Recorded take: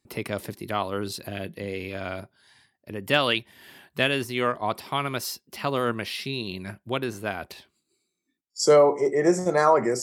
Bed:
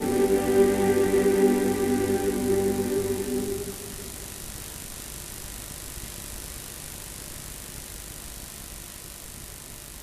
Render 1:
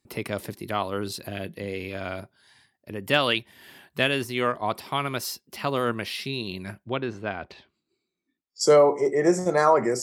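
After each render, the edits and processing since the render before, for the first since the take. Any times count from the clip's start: 6.84–8.61 air absorption 160 m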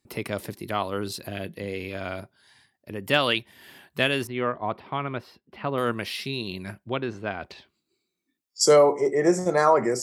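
4.27–5.78 air absorption 450 m; 7.4–8.92 high shelf 4300 Hz +7.5 dB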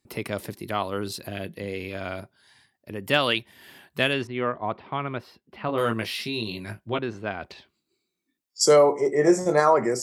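4.13–4.99 LPF 4600 Hz; 5.67–6.99 doubler 18 ms -4 dB; 9.11–9.6 doubler 20 ms -6.5 dB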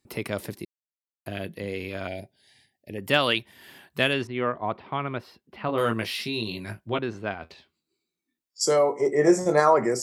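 0.65–1.26 mute; 2.07–2.98 Chebyshev band-stop 730–2000 Hz; 7.34–9 resonator 81 Hz, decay 0.16 s, mix 70%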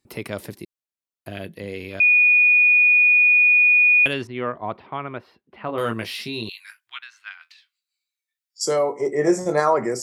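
2–4.06 bleep 2460 Hz -11.5 dBFS; 4.86–5.78 tone controls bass -4 dB, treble -13 dB; 6.49–8.64 inverse Chebyshev high-pass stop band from 560 Hz, stop band 50 dB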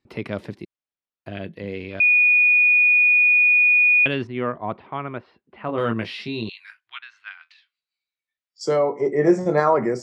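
LPF 3600 Hz 12 dB/oct; dynamic EQ 180 Hz, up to +5 dB, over -36 dBFS, Q 0.82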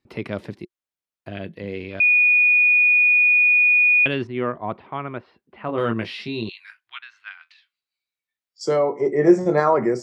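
dynamic EQ 360 Hz, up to +4 dB, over -39 dBFS, Q 8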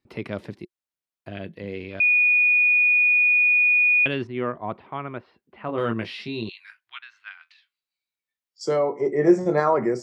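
gain -2.5 dB

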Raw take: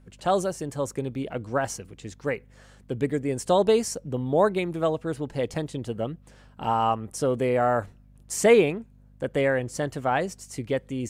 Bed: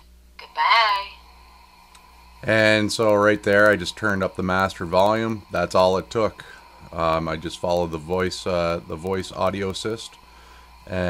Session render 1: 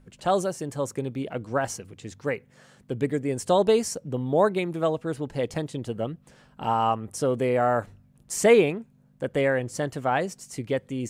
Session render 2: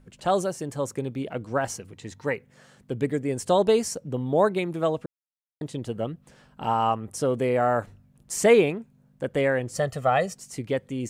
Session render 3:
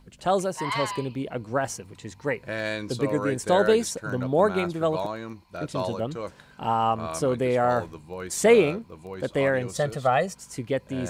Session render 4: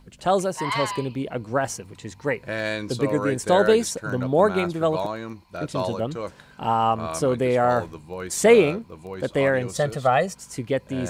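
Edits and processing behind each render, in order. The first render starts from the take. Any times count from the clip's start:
de-hum 50 Hz, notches 2
1.93–2.33 small resonant body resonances 920/1900/4000 Hz, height 11 dB; 5.06–5.61 mute; 9.75–10.35 comb 1.6 ms, depth 77%
add bed -13 dB
gain +2.5 dB

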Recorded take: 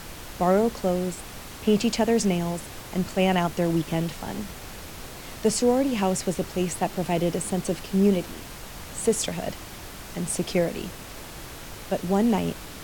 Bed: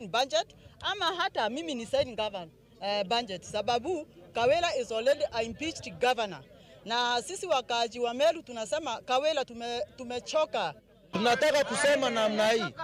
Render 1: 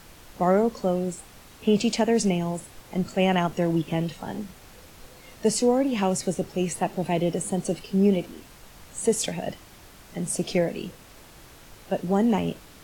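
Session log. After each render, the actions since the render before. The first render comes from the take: noise print and reduce 9 dB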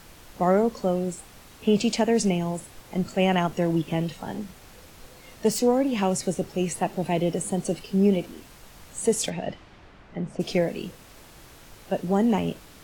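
4.34–5.73 self-modulated delay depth 0.054 ms; 9.29–10.39 LPF 4800 Hz -> 1800 Hz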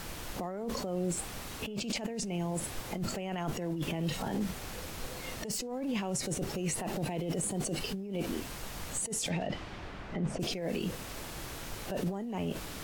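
negative-ratio compressor -32 dBFS, ratio -1; limiter -24.5 dBFS, peak gain reduction 11 dB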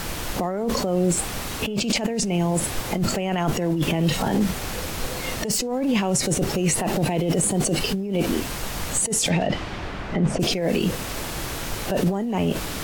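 gain +12 dB

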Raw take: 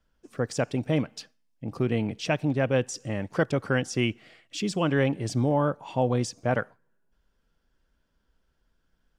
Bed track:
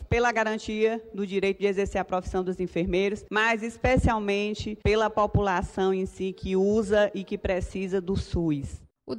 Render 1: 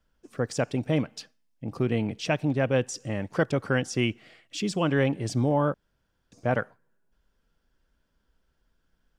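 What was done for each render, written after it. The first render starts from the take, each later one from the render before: 5.74–6.32 room tone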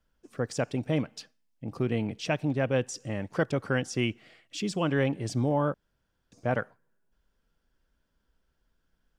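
gain -2.5 dB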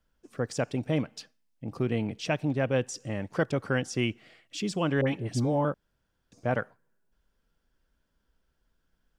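5.01–5.65 dispersion highs, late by 65 ms, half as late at 1100 Hz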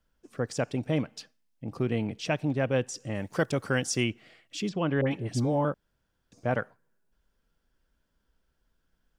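3.14–4.02 high shelf 6800 Hz -> 3900 Hz +12 dB; 4.69–5.11 air absorption 200 m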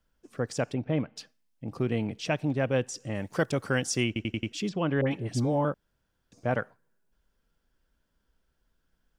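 0.74–1.16 air absorption 270 m; 4.07 stutter in place 0.09 s, 5 plays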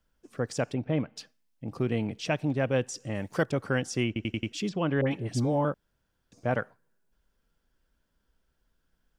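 3.43–4.23 high shelf 3500 Hz -9 dB

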